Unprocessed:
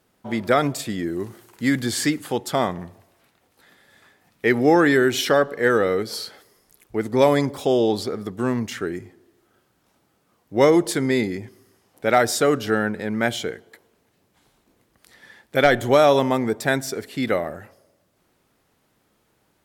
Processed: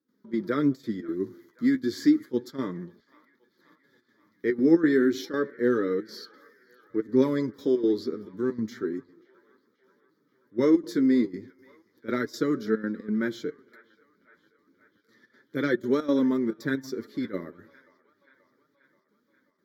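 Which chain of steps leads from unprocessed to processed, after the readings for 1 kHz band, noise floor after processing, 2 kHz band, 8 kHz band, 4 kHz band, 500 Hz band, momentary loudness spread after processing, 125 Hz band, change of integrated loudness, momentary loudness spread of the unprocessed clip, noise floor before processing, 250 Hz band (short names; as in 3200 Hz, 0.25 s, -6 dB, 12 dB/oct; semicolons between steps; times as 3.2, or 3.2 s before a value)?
-16.5 dB, -71 dBFS, -11.5 dB, under -15 dB, -14.0 dB, -8.0 dB, 13 LU, -10.0 dB, -5.5 dB, 13 LU, -67 dBFS, -1.0 dB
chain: HPF 130 Hz 12 dB/oct; bell 310 Hz +14 dB 1.6 oct; fixed phaser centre 2700 Hz, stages 6; step gate ".xx.xxxxx" 180 bpm -12 dB; flange 0.31 Hz, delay 3.5 ms, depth 9.1 ms, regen +28%; on a send: band-limited delay 0.532 s, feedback 62%, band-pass 1500 Hz, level -20.5 dB; on the sum: gain -7.5 dB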